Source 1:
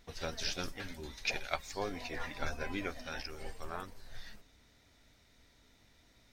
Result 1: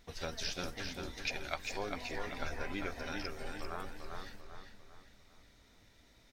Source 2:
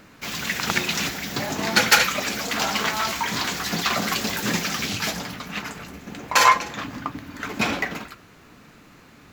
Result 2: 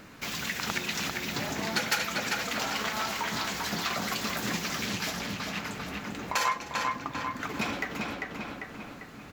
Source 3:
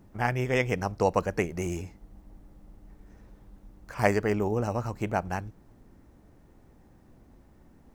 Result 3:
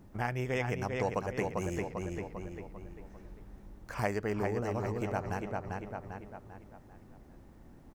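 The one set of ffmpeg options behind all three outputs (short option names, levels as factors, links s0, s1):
-filter_complex "[0:a]asplit=2[s0][s1];[s1]adelay=396,lowpass=f=4200:p=1,volume=0.562,asplit=2[s2][s3];[s3]adelay=396,lowpass=f=4200:p=1,volume=0.43,asplit=2[s4][s5];[s5]adelay=396,lowpass=f=4200:p=1,volume=0.43,asplit=2[s6][s7];[s7]adelay=396,lowpass=f=4200:p=1,volume=0.43,asplit=2[s8][s9];[s9]adelay=396,lowpass=f=4200:p=1,volume=0.43[s10];[s2][s4][s6][s8][s10]amix=inputs=5:normalize=0[s11];[s0][s11]amix=inputs=2:normalize=0,acompressor=threshold=0.0178:ratio=2"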